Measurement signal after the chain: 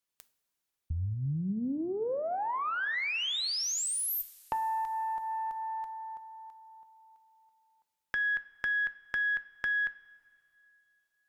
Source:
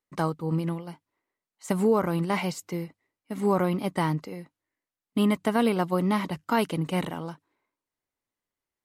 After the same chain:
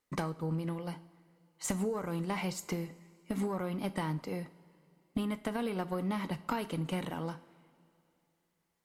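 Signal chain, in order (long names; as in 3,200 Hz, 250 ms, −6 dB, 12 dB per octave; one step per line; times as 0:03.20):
downward compressor 6 to 1, threshold −38 dBFS
tube saturation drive 26 dB, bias 0.4
coupled-rooms reverb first 0.43 s, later 2.9 s, from −17 dB, DRR 11 dB
level +7.5 dB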